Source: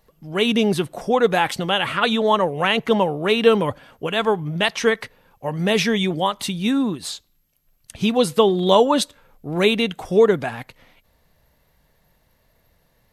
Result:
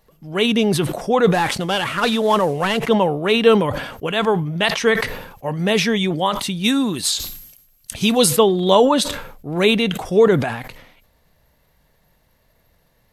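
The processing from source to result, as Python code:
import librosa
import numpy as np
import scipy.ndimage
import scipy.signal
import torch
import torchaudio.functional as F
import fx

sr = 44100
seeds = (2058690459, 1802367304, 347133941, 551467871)

y = fx.cvsd(x, sr, bps=64000, at=(1.33, 2.87))
y = fx.high_shelf(y, sr, hz=fx.line((6.63, 2300.0), (8.35, 4200.0)), db=11.5, at=(6.63, 8.35), fade=0.02)
y = fx.sustainer(y, sr, db_per_s=66.0)
y = F.gain(torch.from_numpy(y), 1.0).numpy()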